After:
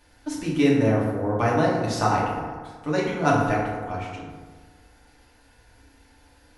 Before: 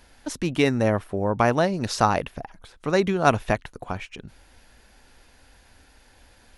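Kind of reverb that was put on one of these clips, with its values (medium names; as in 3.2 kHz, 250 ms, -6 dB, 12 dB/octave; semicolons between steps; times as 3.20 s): FDN reverb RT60 1.5 s, low-frequency decay 1.05×, high-frequency decay 0.45×, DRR -5.5 dB; trim -7.5 dB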